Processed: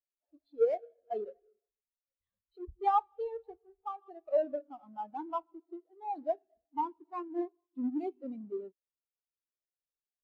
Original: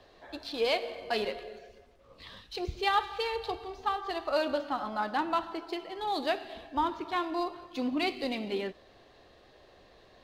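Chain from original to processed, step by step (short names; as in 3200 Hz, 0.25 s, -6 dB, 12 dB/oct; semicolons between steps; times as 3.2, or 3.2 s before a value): half-waves squared off; spectral expander 2.5:1; gain -3.5 dB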